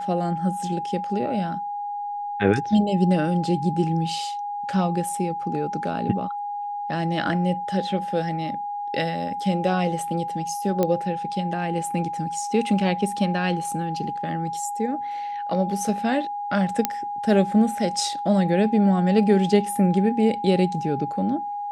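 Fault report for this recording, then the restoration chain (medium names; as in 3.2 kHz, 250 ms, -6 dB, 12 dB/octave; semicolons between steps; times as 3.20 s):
whine 820 Hz -27 dBFS
10.83 s: pop -9 dBFS
16.85 s: pop -4 dBFS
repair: de-click; band-stop 820 Hz, Q 30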